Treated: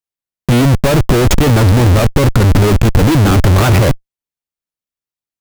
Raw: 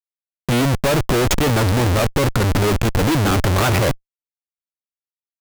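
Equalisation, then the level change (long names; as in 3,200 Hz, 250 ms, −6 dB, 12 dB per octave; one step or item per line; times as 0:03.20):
low-shelf EQ 300 Hz +7 dB
+3.0 dB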